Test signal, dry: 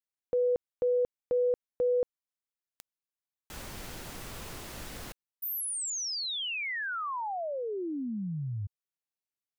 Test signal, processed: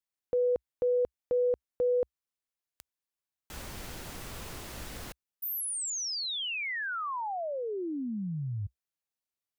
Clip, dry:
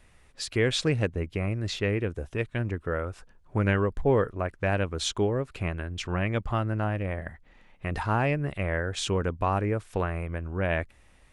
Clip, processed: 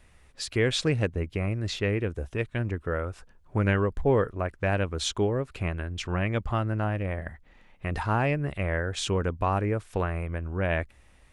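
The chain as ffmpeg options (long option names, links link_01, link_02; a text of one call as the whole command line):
ffmpeg -i in.wav -af "equalizer=frequency=64:width_type=o:width=0.58:gain=4" out.wav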